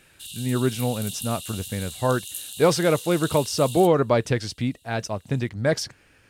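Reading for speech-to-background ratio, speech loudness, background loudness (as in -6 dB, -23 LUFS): 11.0 dB, -24.0 LUFS, -35.0 LUFS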